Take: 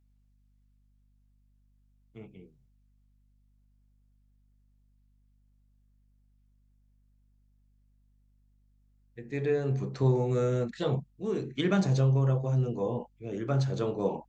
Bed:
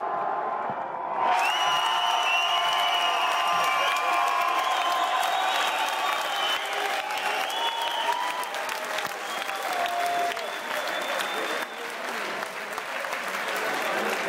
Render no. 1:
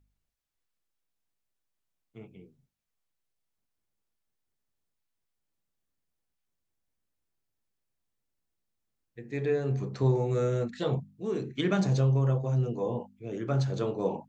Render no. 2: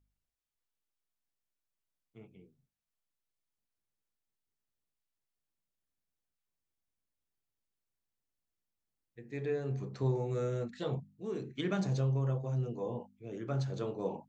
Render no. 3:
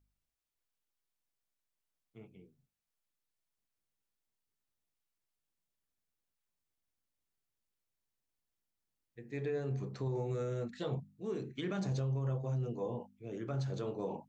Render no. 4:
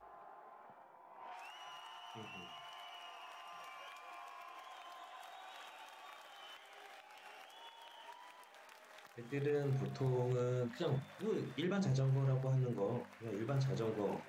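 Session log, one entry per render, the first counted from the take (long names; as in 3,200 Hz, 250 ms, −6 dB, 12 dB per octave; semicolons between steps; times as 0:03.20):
hum removal 50 Hz, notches 5
level −6.5 dB
brickwall limiter −28.5 dBFS, peak gain reduction 7 dB
mix in bed −28.5 dB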